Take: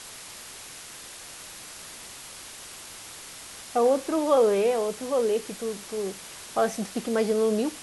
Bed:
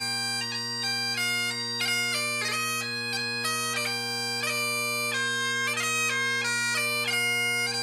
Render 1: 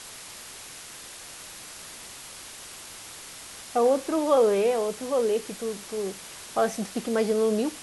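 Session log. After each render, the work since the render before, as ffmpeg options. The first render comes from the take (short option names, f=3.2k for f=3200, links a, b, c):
-af anull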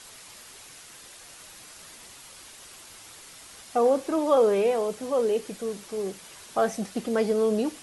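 -af "afftdn=nr=6:nf=-43"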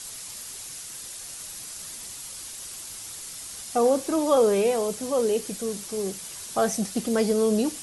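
-af "bass=f=250:g=6,treble=f=4k:g=11"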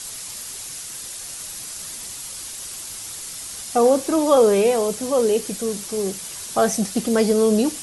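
-af "volume=5dB"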